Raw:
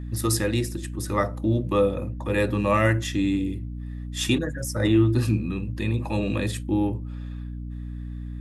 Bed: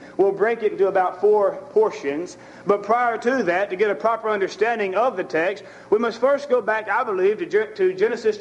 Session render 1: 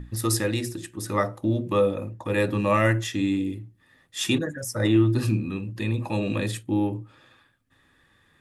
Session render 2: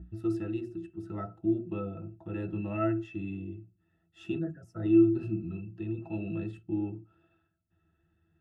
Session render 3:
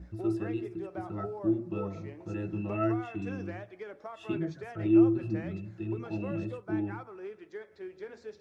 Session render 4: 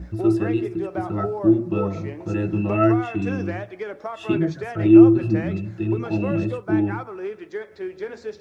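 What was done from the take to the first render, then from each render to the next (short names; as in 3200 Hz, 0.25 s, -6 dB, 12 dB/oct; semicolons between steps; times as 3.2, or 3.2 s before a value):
notches 60/120/180/240/300/360 Hz
octave resonator E, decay 0.1 s
add bed -23.5 dB
gain +11.5 dB; limiter -2 dBFS, peak gain reduction 1 dB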